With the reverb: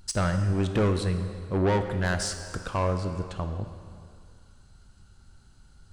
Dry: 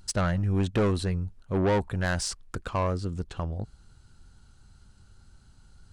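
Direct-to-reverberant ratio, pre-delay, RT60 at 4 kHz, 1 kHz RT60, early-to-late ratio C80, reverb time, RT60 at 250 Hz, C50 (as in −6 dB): 6.5 dB, 12 ms, 1.9 s, 2.3 s, 9.0 dB, 2.2 s, 2.1 s, 8.0 dB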